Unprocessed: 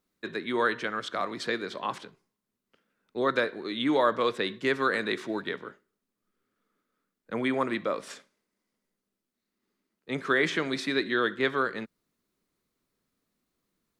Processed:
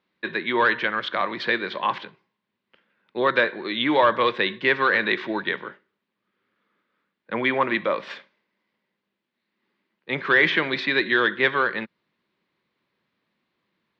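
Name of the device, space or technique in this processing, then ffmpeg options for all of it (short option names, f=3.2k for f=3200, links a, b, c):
overdrive pedal into a guitar cabinet: -filter_complex "[0:a]asplit=2[a][b];[b]highpass=f=720:p=1,volume=10dB,asoftclip=type=tanh:threshold=-10dB[c];[a][c]amix=inputs=2:normalize=0,lowpass=f=2.2k:p=1,volume=-6dB,highpass=100,equalizer=f=270:t=q:w=4:g=-7,equalizer=f=440:t=q:w=4:g=-7,equalizer=f=690:t=q:w=4:g=-7,equalizer=f=1.3k:t=q:w=4:g=-8,lowpass=f=4k:w=0.5412,lowpass=f=4k:w=1.3066,volume=8.5dB"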